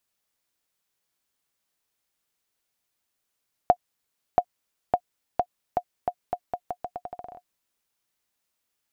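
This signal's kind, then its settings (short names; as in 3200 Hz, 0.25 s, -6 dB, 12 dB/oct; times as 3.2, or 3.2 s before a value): bouncing ball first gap 0.68 s, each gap 0.82, 717 Hz, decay 65 ms -5.5 dBFS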